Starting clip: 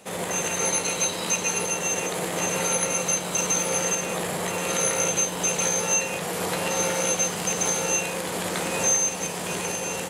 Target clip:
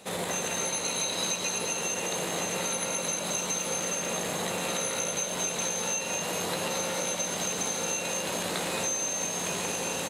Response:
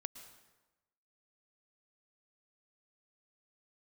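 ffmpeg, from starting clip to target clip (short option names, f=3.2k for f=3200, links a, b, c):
-filter_complex "[0:a]asplit=2[a][b];[b]asplit=7[c][d][e][f][g][h][i];[c]adelay=220,afreqshift=49,volume=-5.5dB[j];[d]adelay=440,afreqshift=98,volume=-10.9dB[k];[e]adelay=660,afreqshift=147,volume=-16.2dB[l];[f]adelay=880,afreqshift=196,volume=-21.6dB[m];[g]adelay=1100,afreqshift=245,volume=-26.9dB[n];[h]adelay=1320,afreqshift=294,volume=-32.3dB[o];[i]adelay=1540,afreqshift=343,volume=-37.6dB[p];[j][k][l][m][n][o][p]amix=inputs=7:normalize=0[q];[a][q]amix=inputs=2:normalize=0,acompressor=threshold=-27dB:ratio=6,equalizer=f=3.9k:w=5.9:g=8,volume=-1dB"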